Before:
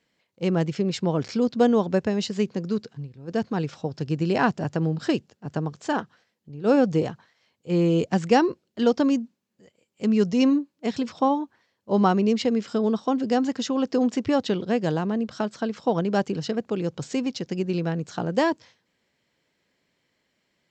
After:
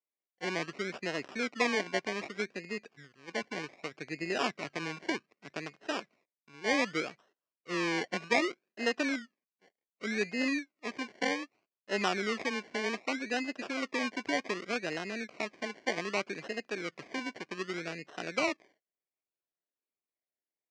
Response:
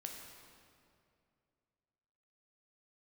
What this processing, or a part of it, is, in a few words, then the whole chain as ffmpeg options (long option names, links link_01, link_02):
circuit-bent sampling toy: -af "agate=range=-20dB:threshold=-54dB:ratio=16:detection=peak,acrusher=samples=27:mix=1:aa=0.000001:lfo=1:lforange=16.2:lforate=0.65,highpass=410,equalizer=frequency=500:width_type=q:width=4:gain=-5,equalizer=frequency=870:width_type=q:width=4:gain=-9,equalizer=frequency=1300:width_type=q:width=4:gain=-4,equalizer=frequency=2300:width_type=q:width=4:gain=6,equalizer=frequency=3500:width_type=q:width=4:gain=-7,lowpass=frequency=5700:width=0.5412,lowpass=frequency=5700:width=1.3066,volume=-5dB"